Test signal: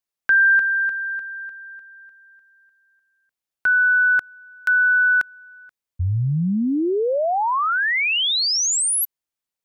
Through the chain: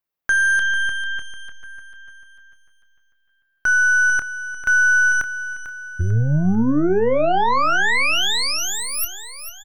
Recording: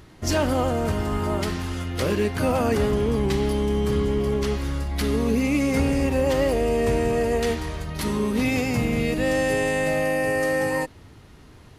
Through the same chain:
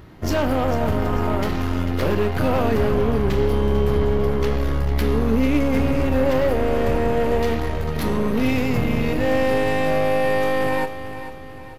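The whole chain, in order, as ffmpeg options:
ffmpeg -i in.wav -filter_complex "[0:a]aemphasis=mode=reproduction:type=75kf,asplit=2[link_01][link_02];[link_02]alimiter=limit=-21dB:level=0:latency=1:release=23,volume=2.5dB[link_03];[link_01][link_03]amix=inputs=2:normalize=0,aexciter=amount=8.1:drive=3.6:freq=12000,aeval=exprs='0.398*(cos(1*acos(clip(val(0)/0.398,-1,1)))-cos(1*PI/2))+0.0447*(cos(6*acos(clip(val(0)/0.398,-1,1)))-cos(6*PI/2))':channel_layout=same,asplit=2[link_04][link_05];[link_05]adelay=27,volume=-12dB[link_06];[link_04][link_06]amix=inputs=2:normalize=0,aecho=1:1:446|892|1338|1784|2230:0.266|0.12|0.0539|0.0242|0.0109,volume=-3dB" out.wav

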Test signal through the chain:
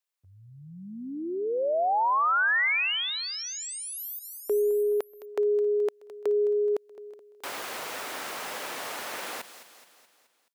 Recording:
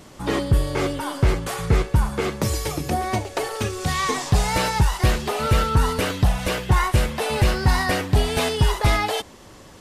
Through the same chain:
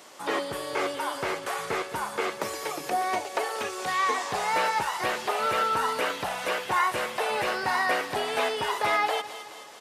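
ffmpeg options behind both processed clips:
ffmpeg -i in.wav -filter_complex "[0:a]highpass=550,aecho=1:1:213|426|639|852|1065:0.158|0.0856|0.0462|0.025|0.0135,acrossover=split=2600[link_01][link_02];[link_02]acompressor=threshold=-38dB:ratio=4:attack=1:release=60[link_03];[link_01][link_03]amix=inputs=2:normalize=0" out.wav

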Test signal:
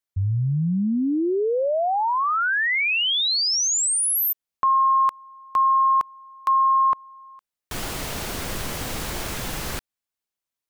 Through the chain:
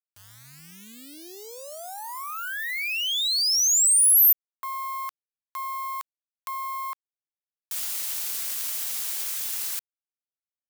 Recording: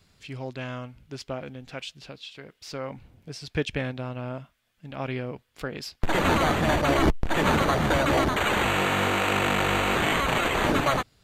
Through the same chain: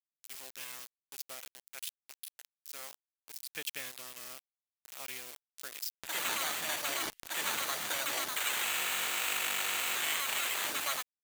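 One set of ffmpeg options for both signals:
ffmpeg -i in.wav -af "aeval=exprs='0.316*(cos(1*acos(clip(val(0)/0.316,-1,1)))-cos(1*PI/2))+0.00891*(cos(3*acos(clip(val(0)/0.316,-1,1)))-cos(3*PI/2))+0.0158*(cos(4*acos(clip(val(0)/0.316,-1,1)))-cos(4*PI/2))+0.0141*(cos(5*acos(clip(val(0)/0.316,-1,1)))-cos(5*PI/2))+0.00501*(cos(7*acos(clip(val(0)/0.316,-1,1)))-cos(7*PI/2))':channel_layout=same,aeval=exprs='val(0)*gte(abs(val(0)),0.0224)':channel_layout=same,aderivative,volume=2dB" out.wav

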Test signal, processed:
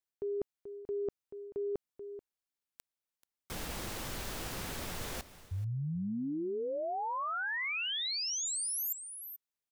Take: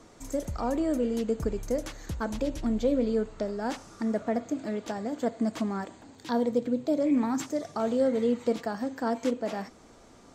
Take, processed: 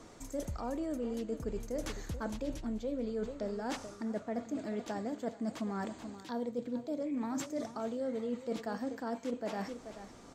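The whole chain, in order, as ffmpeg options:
ffmpeg -i in.wav -af "aecho=1:1:434:0.158,areverse,acompressor=threshold=-34dB:ratio=6,areverse" out.wav

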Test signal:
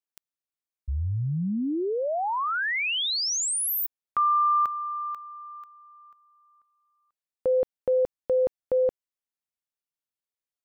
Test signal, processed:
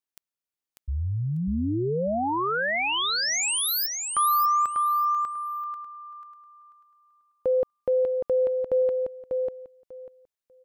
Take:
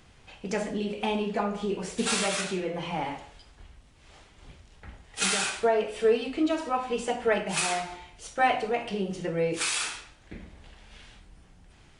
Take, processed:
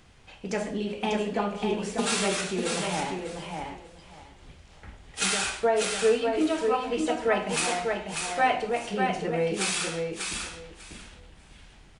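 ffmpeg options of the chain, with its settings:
ffmpeg -i in.wav -af "aecho=1:1:594|1188|1782:0.596|0.107|0.0193" out.wav

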